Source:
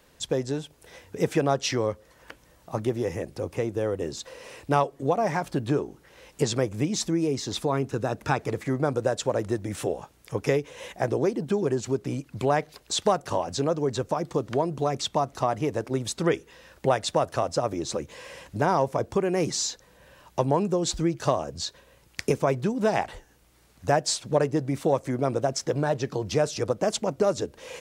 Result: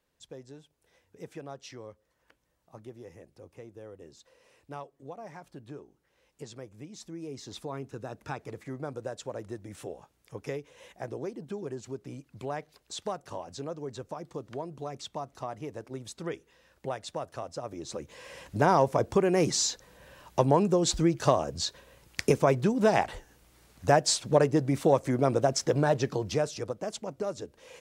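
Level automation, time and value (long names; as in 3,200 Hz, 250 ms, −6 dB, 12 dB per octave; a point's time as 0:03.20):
0:06.95 −19 dB
0:07.43 −12 dB
0:17.59 −12 dB
0:18.65 +0.5 dB
0:26.03 +0.5 dB
0:26.81 −10 dB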